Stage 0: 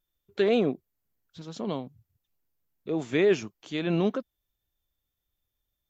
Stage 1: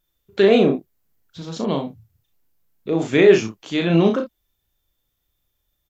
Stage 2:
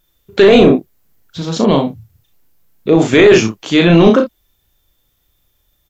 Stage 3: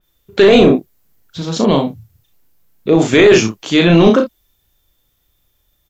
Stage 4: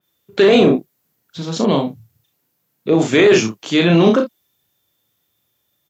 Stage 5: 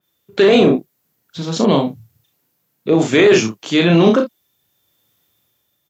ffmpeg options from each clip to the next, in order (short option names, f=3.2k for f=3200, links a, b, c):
-af "aecho=1:1:36|63:0.596|0.251,volume=8dB"
-af "apsyclip=13dB,volume=-1.5dB"
-af "adynamicequalizer=threshold=0.0398:dfrequency=3500:dqfactor=0.7:tfrequency=3500:tqfactor=0.7:attack=5:release=100:ratio=0.375:range=1.5:mode=boostabove:tftype=highshelf,volume=-1dB"
-af "highpass=f=110:w=0.5412,highpass=f=110:w=1.3066,volume=-3dB"
-af "dynaudnorm=f=170:g=7:m=5dB"